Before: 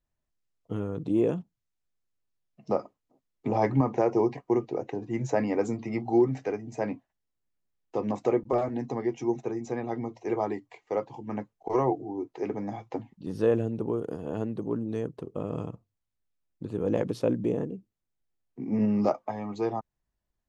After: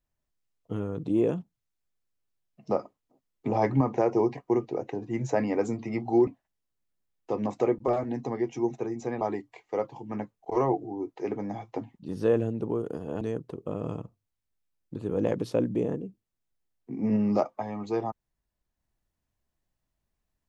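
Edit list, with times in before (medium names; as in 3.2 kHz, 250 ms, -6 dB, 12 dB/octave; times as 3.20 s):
6.27–6.92 s: delete
9.86–10.39 s: delete
14.39–14.90 s: delete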